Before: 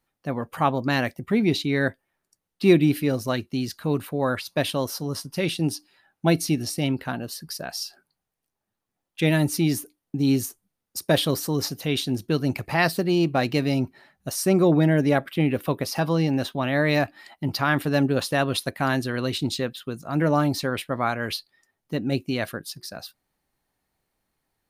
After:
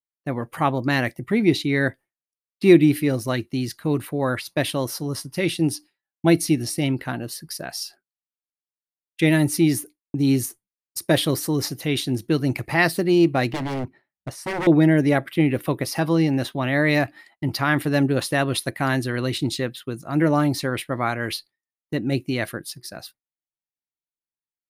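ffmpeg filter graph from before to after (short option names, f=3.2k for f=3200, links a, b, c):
-filter_complex "[0:a]asettb=1/sr,asplit=3[a][b][c];[a]atrim=end=13.524[d];[b]atrim=start=13.52:end=14.67,asetpts=PTS-STARTPTS,afade=t=in:d=0.004:c=qsin,afade=t=out:st=1.146:d=0.004:c=qsin,lowpass=f=1.8k:p=1,aeval=exprs='0.075*(abs(mod(val(0)/0.075+3,4)-2)-1)':c=same[e];[c]atrim=start=14.666[f];[d][e]acrossfade=d=0.004:c1=hsin:c2=qsin[g];[g][f]acrossfade=d=0.004:c1=qsin:c2=hsin,equalizer=f=330:t=o:w=0.27:g=7,agate=range=-33dB:threshold=-37dB:ratio=3:detection=peak,equalizer=f=125:t=o:w=0.33:g=4,equalizer=f=2k:t=o:w=0.33:g=6,equalizer=f=10k:t=o:w=0.33:g=6"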